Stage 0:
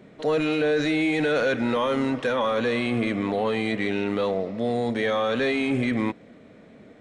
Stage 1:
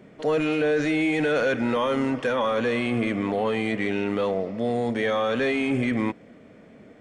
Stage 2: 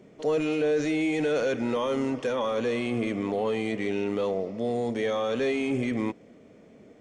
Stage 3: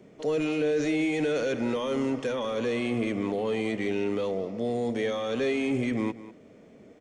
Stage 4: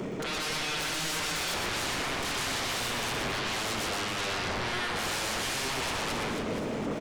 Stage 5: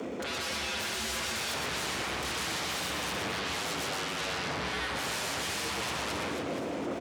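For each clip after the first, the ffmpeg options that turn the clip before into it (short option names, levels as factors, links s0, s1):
-af "bandreject=f=3900:w=7.1"
-af "equalizer=f=400:t=o:w=0.67:g=4,equalizer=f=1600:t=o:w=0.67:g=-5,equalizer=f=6300:t=o:w=0.67:g=7,volume=0.596"
-filter_complex "[0:a]aecho=1:1:196:0.158,acrossover=split=530|1500[s0][s1][s2];[s1]alimiter=level_in=2.66:limit=0.0631:level=0:latency=1,volume=0.376[s3];[s0][s3][s2]amix=inputs=3:normalize=0"
-af "areverse,acompressor=threshold=0.0158:ratio=10,areverse,aeval=exprs='0.0335*sin(PI/2*8.91*val(0)/0.0335)':c=same,aecho=1:1:120|276|478.8|742.4|1085:0.631|0.398|0.251|0.158|0.1,volume=0.841"
-af "afreqshift=62,volume=0.794"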